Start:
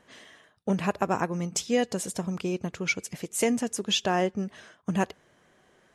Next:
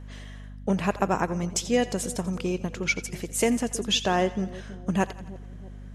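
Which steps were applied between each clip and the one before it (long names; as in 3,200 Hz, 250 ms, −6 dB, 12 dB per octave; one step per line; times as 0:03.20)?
echo with a time of its own for lows and highs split 590 Hz, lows 321 ms, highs 86 ms, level −16 dB
mains hum 50 Hz, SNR 13 dB
level +1.5 dB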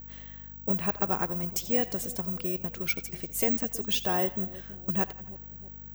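bad sample-rate conversion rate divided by 2×, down none, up zero stuff
level −6.5 dB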